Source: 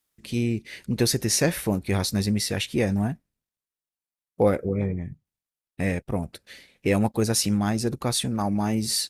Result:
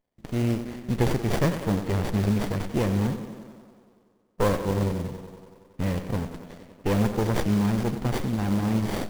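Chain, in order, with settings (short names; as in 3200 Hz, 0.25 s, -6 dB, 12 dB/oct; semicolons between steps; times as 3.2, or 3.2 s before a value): bell 6400 Hz +3 dB 0.7 oct; tape echo 92 ms, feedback 80%, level -9 dB, low-pass 2400 Hz; modulation noise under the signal 14 dB; running maximum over 33 samples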